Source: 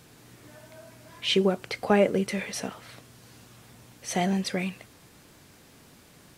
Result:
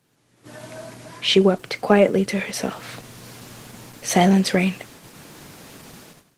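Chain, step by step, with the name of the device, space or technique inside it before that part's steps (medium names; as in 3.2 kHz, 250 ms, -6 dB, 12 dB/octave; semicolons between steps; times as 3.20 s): video call (high-pass 110 Hz 24 dB/octave; level rider gain up to 15 dB; gate -41 dBFS, range -10 dB; trim -1.5 dB; Opus 16 kbps 48 kHz)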